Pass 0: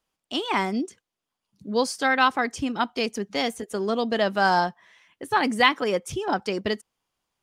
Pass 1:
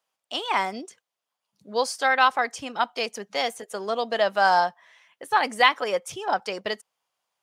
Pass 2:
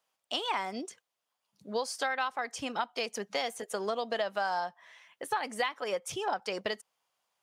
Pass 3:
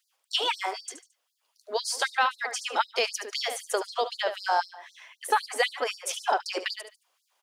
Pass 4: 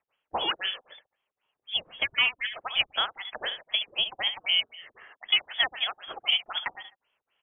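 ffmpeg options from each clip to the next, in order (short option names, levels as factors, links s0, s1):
-af "highpass=120,lowshelf=f=430:t=q:w=1.5:g=-9"
-af "acompressor=threshold=0.0355:ratio=6"
-af "aecho=1:1:73|146|219:0.282|0.0902|0.0289,afftfilt=real='re*gte(b*sr/1024,240*pow(4100/240,0.5+0.5*sin(2*PI*3.9*pts/sr)))':imag='im*gte(b*sr/1024,240*pow(4100/240,0.5+0.5*sin(2*PI*3.9*pts/sr)))':win_size=1024:overlap=0.75,volume=2.51"
-af "lowpass=f=3200:t=q:w=0.5098,lowpass=f=3200:t=q:w=0.6013,lowpass=f=3200:t=q:w=0.9,lowpass=f=3200:t=q:w=2.563,afreqshift=-3800"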